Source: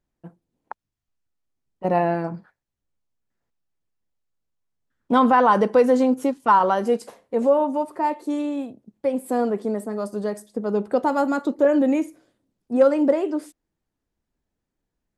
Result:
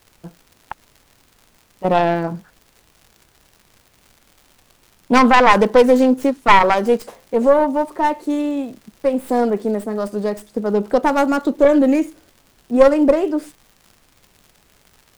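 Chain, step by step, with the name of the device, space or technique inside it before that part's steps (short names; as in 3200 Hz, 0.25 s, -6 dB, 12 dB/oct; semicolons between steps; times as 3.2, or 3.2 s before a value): record under a worn stylus (tracing distortion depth 0.21 ms; crackle 130/s -41 dBFS; pink noise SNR 39 dB); gain +5 dB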